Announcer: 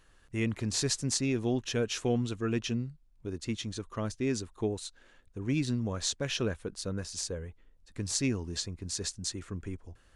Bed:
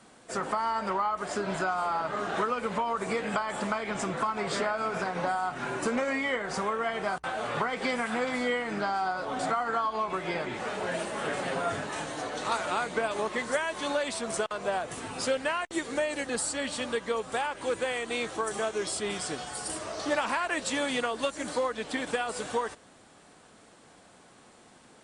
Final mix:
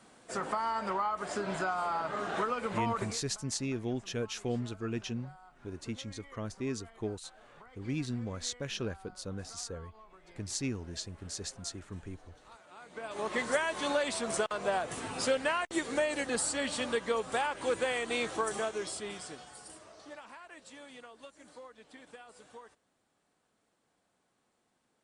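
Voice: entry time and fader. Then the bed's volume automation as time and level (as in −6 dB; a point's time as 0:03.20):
2.40 s, −5.0 dB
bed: 0:03.03 −3.5 dB
0:03.23 −26 dB
0:12.68 −26 dB
0:13.33 −1 dB
0:18.42 −1 dB
0:20.23 −21 dB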